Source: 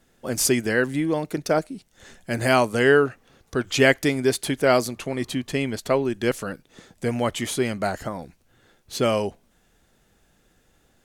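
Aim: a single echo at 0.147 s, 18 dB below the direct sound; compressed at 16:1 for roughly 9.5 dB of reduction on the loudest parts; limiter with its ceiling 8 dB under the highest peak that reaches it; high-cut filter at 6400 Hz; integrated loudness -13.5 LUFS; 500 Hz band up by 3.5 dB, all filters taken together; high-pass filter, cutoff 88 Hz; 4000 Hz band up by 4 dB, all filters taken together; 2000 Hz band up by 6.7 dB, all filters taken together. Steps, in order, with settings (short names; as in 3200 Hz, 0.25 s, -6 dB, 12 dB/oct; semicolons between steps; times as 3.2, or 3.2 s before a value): HPF 88 Hz; LPF 6400 Hz; bell 500 Hz +4 dB; bell 2000 Hz +7.5 dB; bell 4000 Hz +3 dB; compressor 16:1, threshold -16 dBFS; limiter -13.5 dBFS; echo 0.147 s -18 dB; gain +12.5 dB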